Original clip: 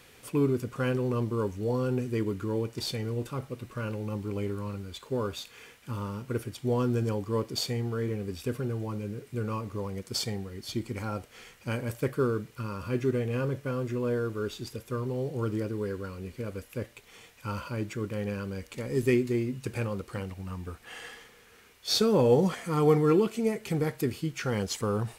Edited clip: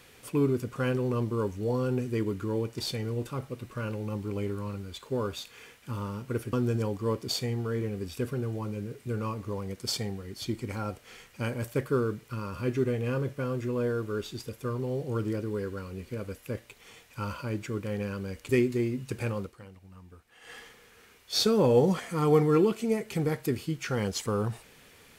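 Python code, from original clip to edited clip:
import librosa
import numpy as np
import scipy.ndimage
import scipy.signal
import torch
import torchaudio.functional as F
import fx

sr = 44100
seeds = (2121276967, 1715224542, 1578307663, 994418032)

y = fx.edit(x, sr, fx.cut(start_s=6.53, length_s=0.27),
    fx.cut(start_s=18.76, length_s=0.28),
    fx.fade_down_up(start_s=19.95, length_s=1.17, db=-13.0, fade_s=0.16), tone=tone)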